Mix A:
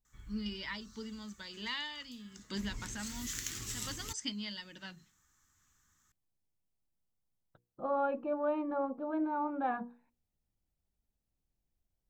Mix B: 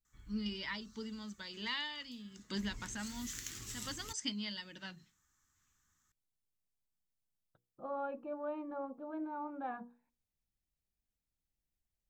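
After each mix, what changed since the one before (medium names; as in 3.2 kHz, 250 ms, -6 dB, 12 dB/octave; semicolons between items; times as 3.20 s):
second voice -7.5 dB; background -5.0 dB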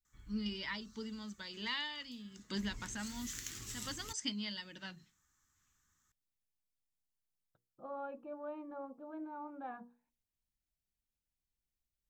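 second voice -4.0 dB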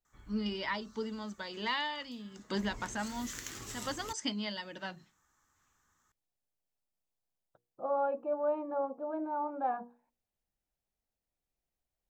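master: add peaking EQ 670 Hz +14 dB 2.1 oct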